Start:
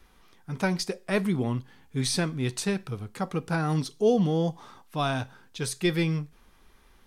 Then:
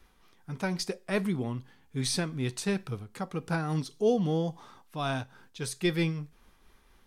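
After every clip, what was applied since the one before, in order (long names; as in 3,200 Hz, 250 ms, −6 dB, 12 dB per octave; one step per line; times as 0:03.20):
amplitude modulation by smooth noise, depth 60%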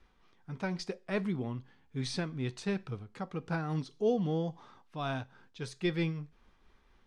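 high-frequency loss of the air 100 metres
level −3.5 dB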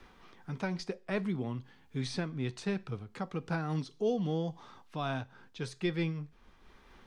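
multiband upward and downward compressor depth 40%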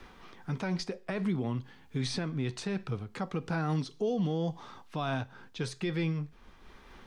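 brickwall limiter −28 dBFS, peak gain reduction 9 dB
level +5 dB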